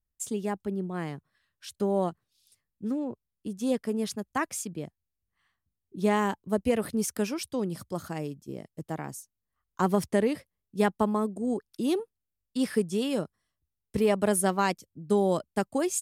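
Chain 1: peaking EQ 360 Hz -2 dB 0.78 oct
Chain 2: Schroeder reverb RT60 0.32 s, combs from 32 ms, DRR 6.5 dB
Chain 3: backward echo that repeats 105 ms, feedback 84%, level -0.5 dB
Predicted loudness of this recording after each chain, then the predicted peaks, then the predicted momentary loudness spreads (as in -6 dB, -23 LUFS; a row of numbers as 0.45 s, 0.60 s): -30.0 LUFS, -28.5 LUFS, -25.0 LUFS; -12.5 dBFS, -11.0 dBFS, -7.0 dBFS; 15 LU, 15 LU, 12 LU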